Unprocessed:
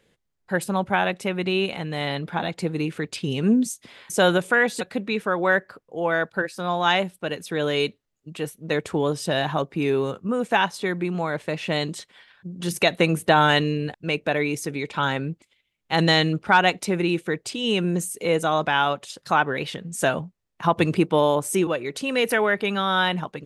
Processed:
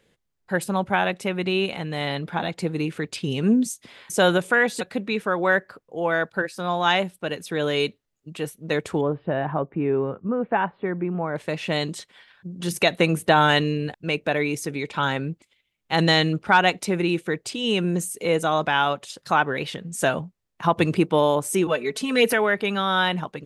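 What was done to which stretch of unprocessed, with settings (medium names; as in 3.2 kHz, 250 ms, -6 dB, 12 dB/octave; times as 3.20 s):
9.01–11.36 s: Gaussian low-pass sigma 4.5 samples
21.68–22.33 s: comb 4.6 ms, depth 87%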